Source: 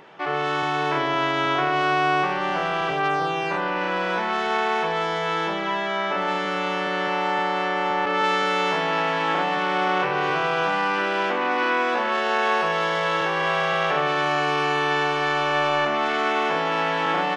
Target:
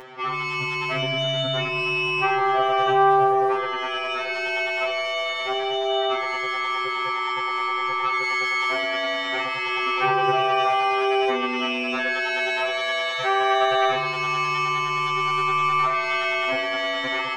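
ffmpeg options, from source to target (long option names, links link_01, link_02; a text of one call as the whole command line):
ffmpeg -i in.wav -af "acompressor=mode=upward:threshold=-40dB:ratio=2.5,afftfilt=real='re*2.45*eq(mod(b,6),0)':imag='im*2.45*eq(mod(b,6),0)':win_size=2048:overlap=0.75,volume=5dB" out.wav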